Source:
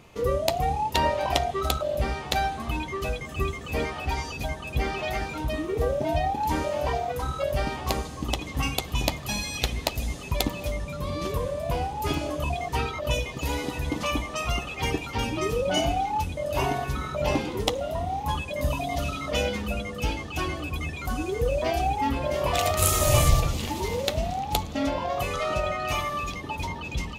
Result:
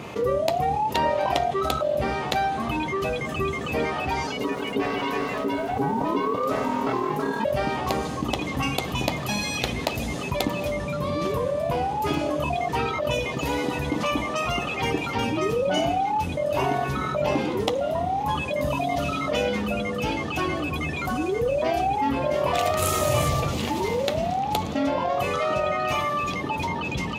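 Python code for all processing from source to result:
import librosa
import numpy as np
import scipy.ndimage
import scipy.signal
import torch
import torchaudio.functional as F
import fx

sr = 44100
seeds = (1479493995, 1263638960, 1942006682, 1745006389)

y = fx.chain(x, sr, fx.ring_mod(carrier_hz=340.0),
    fx.echo_crushed(ms=172, feedback_pct=35, bits=8, wet_db=-10.0), at=(4.27, 7.45))
y = scipy.signal.sosfilt(scipy.signal.butter(2, 130.0, 'highpass', fs=sr, output='sos'), y)
y = fx.high_shelf(y, sr, hz=3400.0, db=-8.5)
y = fx.env_flatten(y, sr, amount_pct=50)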